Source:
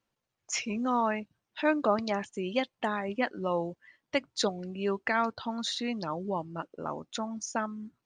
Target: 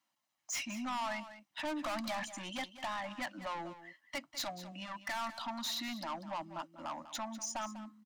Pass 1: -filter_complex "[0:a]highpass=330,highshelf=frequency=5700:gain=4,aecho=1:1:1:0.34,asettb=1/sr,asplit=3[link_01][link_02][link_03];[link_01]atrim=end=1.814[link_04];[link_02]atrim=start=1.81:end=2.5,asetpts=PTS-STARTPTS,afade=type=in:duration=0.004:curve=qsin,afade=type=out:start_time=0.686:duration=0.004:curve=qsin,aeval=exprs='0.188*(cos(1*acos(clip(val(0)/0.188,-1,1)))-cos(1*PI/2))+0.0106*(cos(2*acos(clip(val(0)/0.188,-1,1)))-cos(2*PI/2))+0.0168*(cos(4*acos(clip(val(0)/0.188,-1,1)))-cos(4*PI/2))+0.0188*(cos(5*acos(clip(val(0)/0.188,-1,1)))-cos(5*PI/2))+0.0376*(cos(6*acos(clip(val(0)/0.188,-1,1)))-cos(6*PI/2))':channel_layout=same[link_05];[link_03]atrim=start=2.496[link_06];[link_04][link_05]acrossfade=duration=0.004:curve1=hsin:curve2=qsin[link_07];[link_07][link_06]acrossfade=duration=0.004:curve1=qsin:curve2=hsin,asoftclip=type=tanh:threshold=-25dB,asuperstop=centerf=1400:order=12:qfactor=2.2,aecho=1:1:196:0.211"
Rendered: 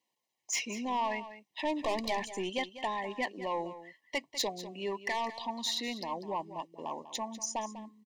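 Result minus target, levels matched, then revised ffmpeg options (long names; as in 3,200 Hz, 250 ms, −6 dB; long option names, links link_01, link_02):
soft clipping: distortion −6 dB; 500 Hz band +3.5 dB
-filter_complex "[0:a]highpass=330,highshelf=frequency=5700:gain=4,aecho=1:1:1:0.34,asettb=1/sr,asplit=3[link_01][link_02][link_03];[link_01]atrim=end=1.814[link_04];[link_02]atrim=start=1.81:end=2.5,asetpts=PTS-STARTPTS,afade=type=in:duration=0.004:curve=qsin,afade=type=out:start_time=0.686:duration=0.004:curve=qsin,aeval=exprs='0.188*(cos(1*acos(clip(val(0)/0.188,-1,1)))-cos(1*PI/2))+0.0106*(cos(2*acos(clip(val(0)/0.188,-1,1)))-cos(2*PI/2))+0.0168*(cos(4*acos(clip(val(0)/0.188,-1,1)))-cos(4*PI/2))+0.0188*(cos(5*acos(clip(val(0)/0.188,-1,1)))-cos(5*PI/2))+0.0376*(cos(6*acos(clip(val(0)/0.188,-1,1)))-cos(6*PI/2))':channel_layout=same[link_05];[link_03]atrim=start=2.496[link_06];[link_04][link_05]acrossfade=duration=0.004:curve1=hsin:curve2=qsin[link_07];[link_07][link_06]acrossfade=duration=0.004:curve1=qsin:curve2=hsin,asoftclip=type=tanh:threshold=-34.5dB,asuperstop=centerf=430:order=12:qfactor=2.2,aecho=1:1:196:0.211"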